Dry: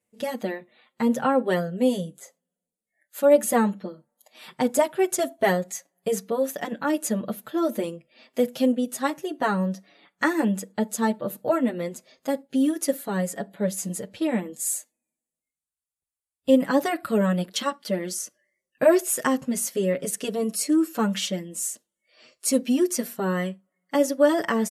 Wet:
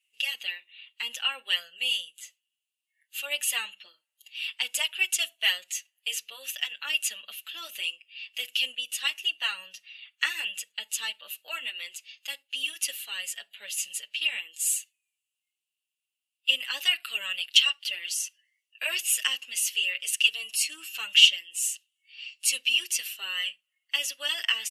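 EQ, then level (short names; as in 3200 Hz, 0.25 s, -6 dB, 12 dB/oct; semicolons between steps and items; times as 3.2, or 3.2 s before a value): resonant high-pass 2800 Hz, resonance Q 13; 0.0 dB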